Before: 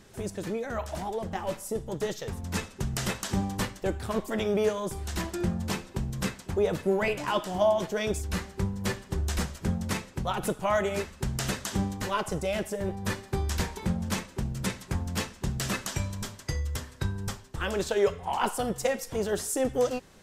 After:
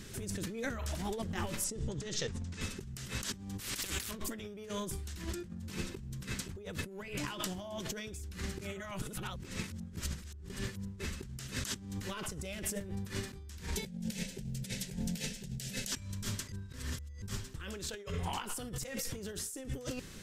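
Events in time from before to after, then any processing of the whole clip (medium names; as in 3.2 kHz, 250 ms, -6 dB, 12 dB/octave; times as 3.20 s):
1.64–2.61 s: low-pass 7.9 kHz 24 dB/octave
3.60–4.11 s: spectrum-flattening compressor 4:1
8.61–11.00 s: reverse
13.76–15.92 s: static phaser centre 310 Hz, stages 6
16.52–17.22 s: reverse
whole clip: peaking EQ 750 Hz -13.5 dB 1.4 oct; compressor with a negative ratio -42 dBFS, ratio -1; trim +1 dB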